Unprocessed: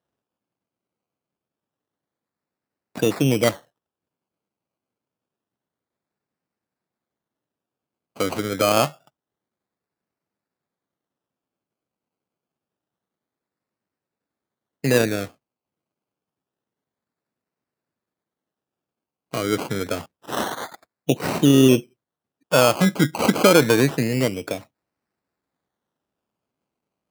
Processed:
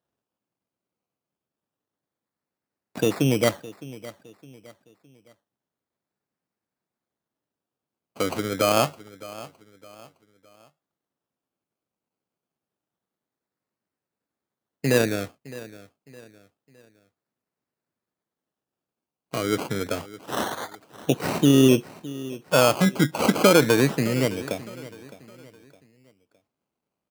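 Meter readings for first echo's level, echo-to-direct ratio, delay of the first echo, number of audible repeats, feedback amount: -18.0 dB, -17.5 dB, 0.612 s, 3, 38%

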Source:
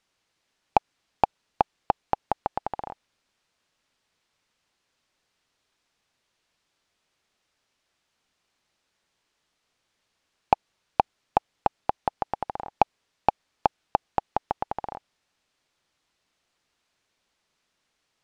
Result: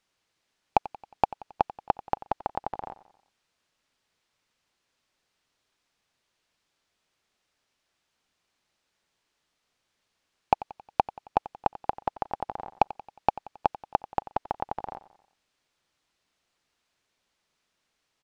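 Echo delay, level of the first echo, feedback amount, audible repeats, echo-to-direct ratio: 90 ms, -17.5 dB, 52%, 4, -16.0 dB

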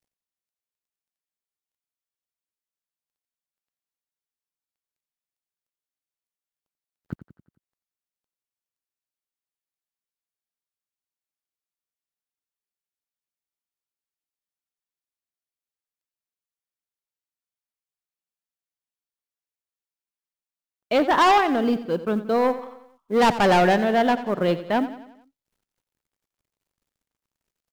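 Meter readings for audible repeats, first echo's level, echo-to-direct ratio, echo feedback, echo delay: 4, -14.0 dB, -12.5 dB, 51%, 89 ms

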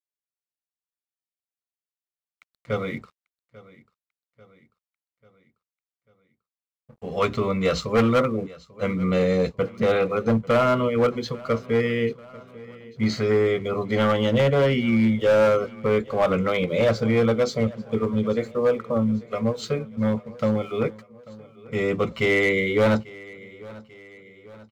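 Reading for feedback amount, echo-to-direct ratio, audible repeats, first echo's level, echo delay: 54%, -19.5 dB, 3, -21.0 dB, 0.842 s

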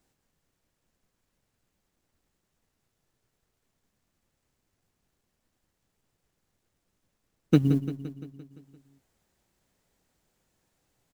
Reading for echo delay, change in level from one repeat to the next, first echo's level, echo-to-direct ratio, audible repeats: 0.172 s, -4.5 dB, -12.0 dB, -10.0 dB, 6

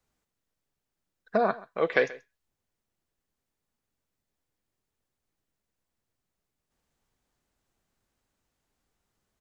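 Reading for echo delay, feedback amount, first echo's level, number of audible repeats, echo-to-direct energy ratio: 0.132 s, no steady repeat, -20.0 dB, 1, -20.0 dB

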